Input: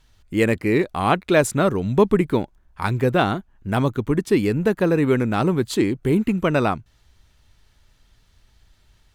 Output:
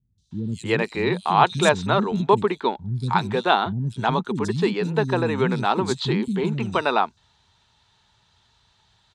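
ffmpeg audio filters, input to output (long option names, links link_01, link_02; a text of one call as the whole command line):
ffmpeg -i in.wav -filter_complex "[0:a]highpass=120,equalizer=frequency=300:width_type=q:width=4:gain=-9,equalizer=frequency=550:width_type=q:width=4:gain=-6,equalizer=frequency=900:width_type=q:width=4:gain=8,equalizer=frequency=2100:width_type=q:width=4:gain=-4,equalizer=frequency=3800:width_type=q:width=4:gain=9,lowpass=frequency=7800:width=0.5412,lowpass=frequency=7800:width=1.3066,acrossover=split=250|4900[link_01][link_02][link_03];[link_03]adelay=180[link_04];[link_02]adelay=310[link_05];[link_01][link_05][link_04]amix=inputs=3:normalize=0,volume=1dB" out.wav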